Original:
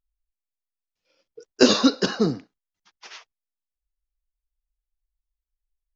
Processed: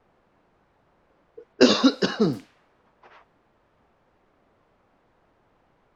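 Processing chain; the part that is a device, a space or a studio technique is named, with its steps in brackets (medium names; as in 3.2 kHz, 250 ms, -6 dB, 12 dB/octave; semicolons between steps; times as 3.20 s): cassette deck with a dynamic noise filter (white noise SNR 23 dB; level-controlled noise filter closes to 840 Hz, open at -18.5 dBFS); 1.53–2.33 s: low-pass 5.3 kHz 12 dB/octave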